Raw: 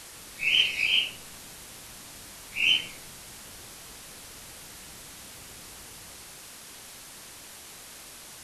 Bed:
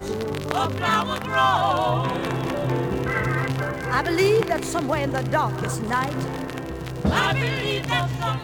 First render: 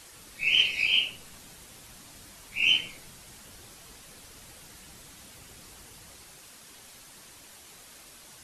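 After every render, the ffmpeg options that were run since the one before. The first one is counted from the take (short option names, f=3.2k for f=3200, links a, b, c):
-af "afftdn=nr=6:nf=-46"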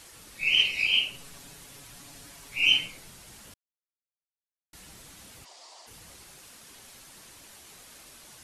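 -filter_complex "[0:a]asettb=1/sr,asplit=3[a][b][c];[a]atrim=end=1.134[d];[b]atrim=start=1.13:end=2.87,asetpts=PTS-STARTPTS,afade=t=in:d=0.004:c=qsin,afade=t=out:st=1.736:d=0.004:c=qsin,aecho=1:1:7.1:0.59,atrim=end_sample=76734[e];[c]atrim=start=2.866[f];[d][e]acrossfade=d=0.004:c1=hsin:c2=qsin[g];[g][f]acrossfade=d=0.004:c1=qsin:c2=hsin,asplit=3[h][i][j];[h]afade=t=out:st=5.44:d=0.02[k];[i]highpass=f=450:w=0.5412,highpass=f=450:w=1.3066,equalizer=f=450:t=q:w=4:g=-6,equalizer=f=670:t=q:w=4:g=9,equalizer=f=970:t=q:w=4:g=8,equalizer=f=1.5k:t=q:w=4:g=-9,equalizer=f=2.5k:t=q:w=4:g=-5,equalizer=f=4.7k:t=q:w=4:g=6,lowpass=f=7.7k:w=0.5412,lowpass=f=7.7k:w=1.3066,afade=t=in:st=5.44:d=0.02,afade=t=out:st=5.86:d=0.02[l];[j]afade=t=in:st=5.86:d=0.02[m];[k][l][m]amix=inputs=3:normalize=0,asplit=3[n][o][p];[n]atrim=end=3.54,asetpts=PTS-STARTPTS,afade=t=out:st=3.536:d=0.004:c=hsin[q];[o]atrim=start=3.54:end=4.73,asetpts=PTS-STARTPTS,volume=0[r];[p]atrim=start=4.73,asetpts=PTS-STARTPTS,afade=t=in:d=0.004:c=hsin[s];[q][r][s]concat=n=3:v=0:a=1"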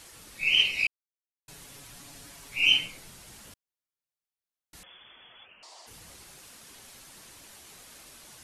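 -filter_complex "[0:a]asettb=1/sr,asplit=3[a][b][c];[a]atrim=end=4.834[d];[b]atrim=start=4.83:end=5.63,asetpts=PTS-STARTPTS,afade=t=in:d=0.004:c=qsin,afade=t=out:st=0.796:d=0.004:c=qsin,lowpass=f=3k:t=q:w=0.5098,lowpass=f=3k:t=q:w=0.6013,lowpass=f=3k:t=q:w=0.9,lowpass=f=3k:t=q:w=2.563,afreqshift=-3500[e];[c]atrim=start=5.626[f];[d][e]acrossfade=d=0.004:c1=hsin:c2=qsin[g];[g][f]acrossfade=d=0.004:c1=qsin:c2=hsin,asplit=3[h][i][j];[h]atrim=end=0.87,asetpts=PTS-STARTPTS,afade=t=out:st=0.866:d=0.004:c=hsin[k];[i]atrim=start=0.87:end=1.48,asetpts=PTS-STARTPTS,volume=0[l];[j]atrim=start=1.48,asetpts=PTS-STARTPTS,afade=t=in:d=0.004:c=hsin[m];[k][l][m]concat=n=3:v=0:a=1"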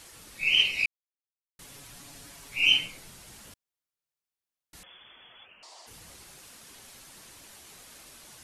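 -filter_complex "[0:a]asplit=3[a][b][c];[a]atrim=end=0.86,asetpts=PTS-STARTPTS,afade=t=out:st=0.856:d=0.004:c=hsin[d];[b]atrim=start=0.86:end=1.59,asetpts=PTS-STARTPTS,volume=0[e];[c]atrim=start=1.59,asetpts=PTS-STARTPTS,afade=t=in:d=0.004:c=hsin[f];[d][e][f]concat=n=3:v=0:a=1"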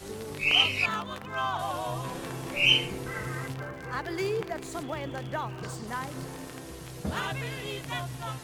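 -filter_complex "[1:a]volume=-11.5dB[a];[0:a][a]amix=inputs=2:normalize=0"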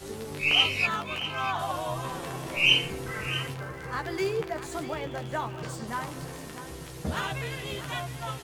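-filter_complex "[0:a]asplit=2[a][b];[b]adelay=13,volume=-7dB[c];[a][c]amix=inputs=2:normalize=0,aecho=1:1:646:0.237"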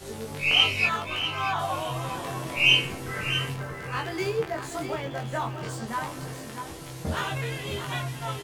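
-filter_complex "[0:a]asplit=2[a][b];[b]adelay=22,volume=-3.5dB[c];[a][c]amix=inputs=2:normalize=0,aecho=1:1:636:0.251"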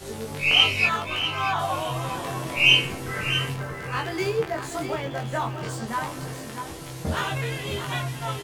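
-af "volume=2.5dB"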